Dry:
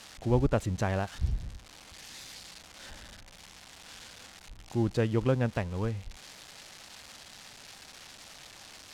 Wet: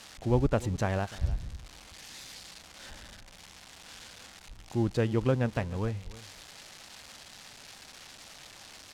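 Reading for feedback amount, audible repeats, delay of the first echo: no regular repeats, 1, 301 ms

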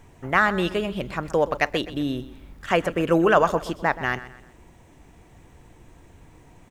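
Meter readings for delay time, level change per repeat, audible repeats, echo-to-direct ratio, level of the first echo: 126 ms, -8.5 dB, 3, -15.0 dB, -15.5 dB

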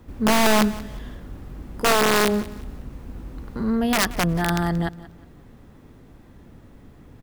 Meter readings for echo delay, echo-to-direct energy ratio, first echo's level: 180 ms, -17.5 dB, -18.0 dB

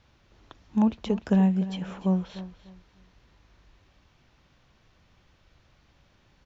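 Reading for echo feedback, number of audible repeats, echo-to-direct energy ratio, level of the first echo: 25%, 2, -14.5 dB, -15.0 dB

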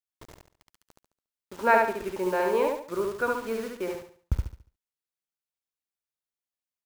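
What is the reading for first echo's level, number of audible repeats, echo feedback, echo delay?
-3.0 dB, 4, 35%, 71 ms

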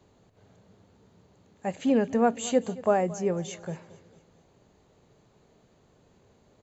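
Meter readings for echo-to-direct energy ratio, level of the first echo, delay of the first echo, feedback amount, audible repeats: -18.0 dB, -19.0 dB, 225 ms, 47%, 3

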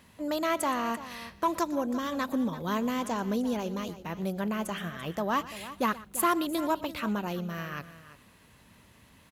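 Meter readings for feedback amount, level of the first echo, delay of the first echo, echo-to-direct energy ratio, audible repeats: no regular repeats, -18.5 dB, 120 ms, -13.5 dB, 3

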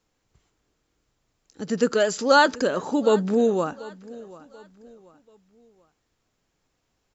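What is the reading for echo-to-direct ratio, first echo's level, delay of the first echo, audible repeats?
-19.5 dB, -20.0 dB, 736 ms, 2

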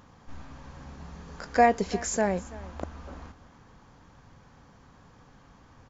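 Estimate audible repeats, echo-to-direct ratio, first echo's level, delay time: 1, -19.5 dB, -19.5 dB, 335 ms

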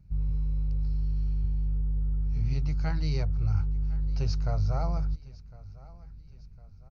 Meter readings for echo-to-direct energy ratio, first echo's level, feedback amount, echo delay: -20.0 dB, -21.0 dB, 48%, 1056 ms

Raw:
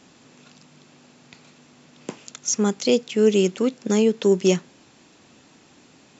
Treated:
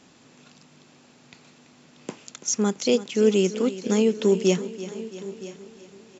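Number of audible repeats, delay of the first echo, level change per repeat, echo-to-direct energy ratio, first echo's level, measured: 7, 334 ms, no regular repeats, -11.5 dB, -15.0 dB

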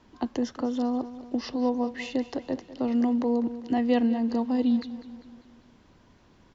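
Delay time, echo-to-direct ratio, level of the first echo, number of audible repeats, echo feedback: 199 ms, -13.5 dB, -15.0 dB, 4, 52%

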